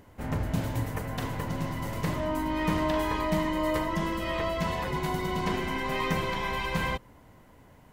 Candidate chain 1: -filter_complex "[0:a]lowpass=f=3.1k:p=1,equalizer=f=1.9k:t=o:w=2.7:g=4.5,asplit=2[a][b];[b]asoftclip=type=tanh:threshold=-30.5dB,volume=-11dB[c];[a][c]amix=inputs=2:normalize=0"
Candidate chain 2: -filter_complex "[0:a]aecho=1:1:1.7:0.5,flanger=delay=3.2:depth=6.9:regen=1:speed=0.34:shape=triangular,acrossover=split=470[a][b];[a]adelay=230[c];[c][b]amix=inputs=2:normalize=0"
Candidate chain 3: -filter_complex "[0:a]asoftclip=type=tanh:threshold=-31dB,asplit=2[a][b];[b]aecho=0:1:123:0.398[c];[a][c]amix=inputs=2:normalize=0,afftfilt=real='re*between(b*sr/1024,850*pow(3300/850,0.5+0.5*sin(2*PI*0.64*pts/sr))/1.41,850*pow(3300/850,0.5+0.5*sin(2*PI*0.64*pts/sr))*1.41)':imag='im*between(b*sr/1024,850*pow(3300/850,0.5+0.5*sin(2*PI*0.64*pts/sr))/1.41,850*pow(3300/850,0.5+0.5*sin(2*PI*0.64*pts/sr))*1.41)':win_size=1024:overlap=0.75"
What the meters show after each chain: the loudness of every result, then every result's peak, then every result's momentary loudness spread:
-27.5, -33.5, -42.5 LUFS; -14.0, -17.0, -29.0 dBFS; 6, 5, 10 LU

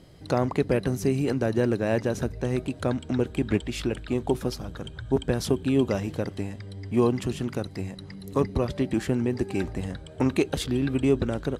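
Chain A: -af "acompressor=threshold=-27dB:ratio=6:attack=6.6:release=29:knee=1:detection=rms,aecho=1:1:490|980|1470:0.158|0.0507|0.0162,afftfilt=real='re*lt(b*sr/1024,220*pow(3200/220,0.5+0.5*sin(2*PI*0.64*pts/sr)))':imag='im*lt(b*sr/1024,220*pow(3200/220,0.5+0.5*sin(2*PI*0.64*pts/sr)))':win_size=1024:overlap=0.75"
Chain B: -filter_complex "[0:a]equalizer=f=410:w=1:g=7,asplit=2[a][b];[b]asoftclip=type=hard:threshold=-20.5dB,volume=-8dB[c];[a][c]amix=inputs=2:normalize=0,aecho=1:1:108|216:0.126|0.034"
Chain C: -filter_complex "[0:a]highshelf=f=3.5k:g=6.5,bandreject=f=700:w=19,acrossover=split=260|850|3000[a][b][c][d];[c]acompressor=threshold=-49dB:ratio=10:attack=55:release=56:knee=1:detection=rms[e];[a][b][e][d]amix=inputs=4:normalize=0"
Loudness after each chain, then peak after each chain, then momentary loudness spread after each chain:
-33.5, -20.5, -27.0 LUFS; -17.0, -5.0, -10.5 dBFS; 6, 11, 10 LU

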